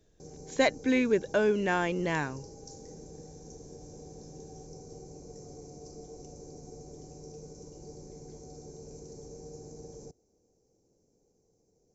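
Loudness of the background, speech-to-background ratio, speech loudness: -48.0 LUFS, 19.5 dB, -28.5 LUFS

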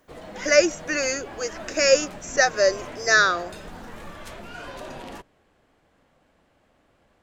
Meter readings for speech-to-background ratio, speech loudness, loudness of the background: 18.0 dB, -21.0 LUFS, -39.0 LUFS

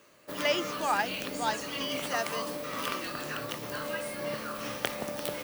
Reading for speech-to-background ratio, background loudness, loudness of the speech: 1.5 dB, -35.0 LUFS, -33.5 LUFS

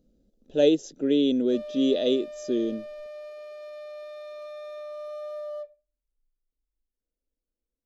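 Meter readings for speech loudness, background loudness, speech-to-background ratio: -25.0 LUFS, -39.5 LUFS, 14.5 dB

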